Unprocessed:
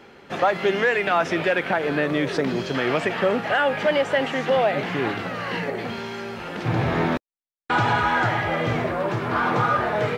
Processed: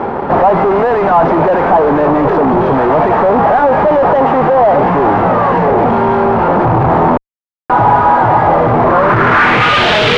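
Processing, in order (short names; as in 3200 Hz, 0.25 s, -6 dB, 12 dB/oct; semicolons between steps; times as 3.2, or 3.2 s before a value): CVSD 32 kbps; fuzz box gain 44 dB, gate -52 dBFS; low-pass sweep 910 Hz -> 3300 Hz, 8.79–9.88; gain +2.5 dB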